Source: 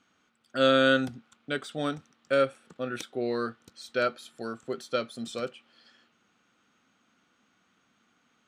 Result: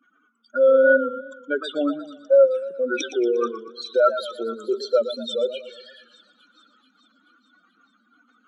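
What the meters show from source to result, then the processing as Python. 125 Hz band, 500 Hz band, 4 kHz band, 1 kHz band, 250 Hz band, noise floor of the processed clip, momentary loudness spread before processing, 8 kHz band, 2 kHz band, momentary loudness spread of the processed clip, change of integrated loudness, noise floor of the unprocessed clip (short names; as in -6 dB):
under -15 dB, +10.0 dB, +0.5 dB, +3.5 dB, +3.0 dB, -64 dBFS, 16 LU, n/a, +4.0 dB, 14 LU, +8.0 dB, -70 dBFS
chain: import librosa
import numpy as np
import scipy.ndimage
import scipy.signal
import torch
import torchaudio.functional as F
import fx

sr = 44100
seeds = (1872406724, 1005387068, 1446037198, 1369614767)

p1 = fx.spec_expand(x, sr, power=3.3)
p2 = scipy.signal.sosfilt(scipy.signal.butter(4, 310.0, 'highpass', fs=sr, output='sos'), p1)
p3 = fx.rider(p2, sr, range_db=5, speed_s=0.5)
p4 = p2 + (p3 * librosa.db_to_amplitude(-2.5))
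p5 = fx.dynamic_eq(p4, sr, hz=460.0, q=3.8, threshold_db=-38.0, ratio=4.0, max_db=-3)
p6 = fx.echo_wet_highpass(p5, sr, ms=433, feedback_pct=61, hz=3100.0, wet_db=-17.0)
p7 = fx.echo_warbled(p6, sr, ms=118, feedback_pct=47, rate_hz=2.8, cents=113, wet_db=-11.5)
y = p7 * librosa.db_to_amplitude(5.5)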